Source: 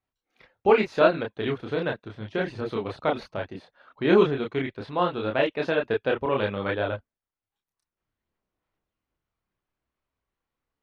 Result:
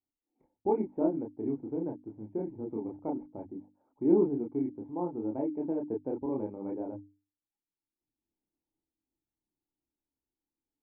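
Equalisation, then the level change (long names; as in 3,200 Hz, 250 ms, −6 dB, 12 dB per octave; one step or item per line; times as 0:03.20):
formant resonators in series u
low-pass filter 3,100 Hz
mains-hum notches 50/100/150/200/250/300 Hz
+3.5 dB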